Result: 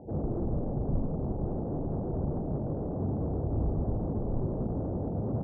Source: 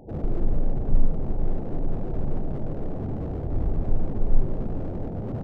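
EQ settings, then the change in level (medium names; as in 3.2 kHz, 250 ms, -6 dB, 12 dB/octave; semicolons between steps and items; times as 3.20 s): high-pass 54 Hz 12 dB/octave; low-pass 1.1 kHz 24 dB/octave; 0.0 dB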